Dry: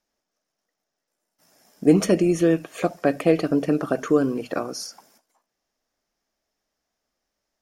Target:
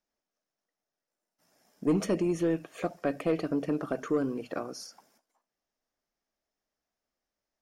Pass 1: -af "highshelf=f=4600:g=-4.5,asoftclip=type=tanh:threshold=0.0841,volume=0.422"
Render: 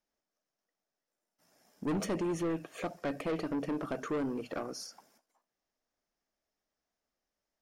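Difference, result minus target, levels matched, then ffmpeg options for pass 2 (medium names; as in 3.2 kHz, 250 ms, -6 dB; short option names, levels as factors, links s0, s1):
saturation: distortion +10 dB
-af "highshelf=f=4600:g=-4.5,asoftclip=type=tanh:threshold=0.299,volume=0.422"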